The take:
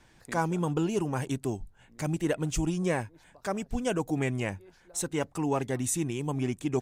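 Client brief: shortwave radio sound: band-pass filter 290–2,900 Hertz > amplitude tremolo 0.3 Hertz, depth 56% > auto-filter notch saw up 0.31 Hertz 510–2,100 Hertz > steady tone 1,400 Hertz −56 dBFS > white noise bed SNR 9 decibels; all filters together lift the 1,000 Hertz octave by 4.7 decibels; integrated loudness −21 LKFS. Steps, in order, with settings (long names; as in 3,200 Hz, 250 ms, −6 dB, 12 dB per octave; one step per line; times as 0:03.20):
band-pass filter 290–2,900 Hz
parametric band 1,000 Hz +6 dB
amplitude tremolo 0.3 Hz, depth 56%
auto-filter notch saw up 0.31 Hz 510–2,100 Hz
steady tone 1,400 Hz −56 dBFS
white noise bed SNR 9 dB
level +16 dB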